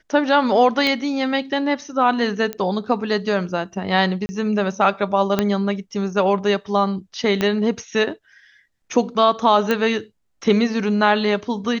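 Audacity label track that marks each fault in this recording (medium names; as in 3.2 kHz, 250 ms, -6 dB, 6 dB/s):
0.870000	0.870000	pop -9 dBFS
2.530000	2.530000	pop -12 dBFS
4.260000	4.290000	dropout 30 ms
5.390000	5.390000	pop -4 dBFS
7.410000	7.410000	pop -7 dBFS
9.710000	9.710000	pop -7 dBFS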